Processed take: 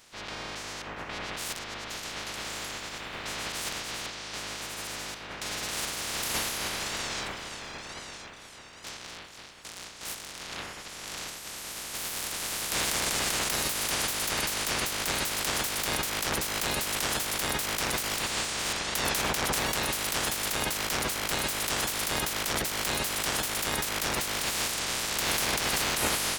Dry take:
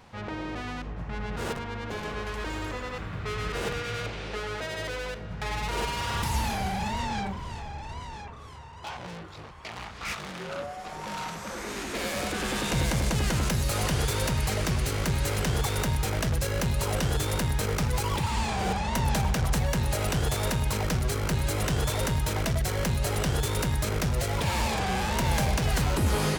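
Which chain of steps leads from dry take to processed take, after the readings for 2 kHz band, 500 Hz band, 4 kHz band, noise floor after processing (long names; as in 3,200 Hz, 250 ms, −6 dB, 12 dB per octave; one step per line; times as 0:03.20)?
+2.0 dB, −5.0 dB, +4.5 dB, −45 dBFS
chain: ceiling on every frequency bin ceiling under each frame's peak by 30 dB
level −3.5 dB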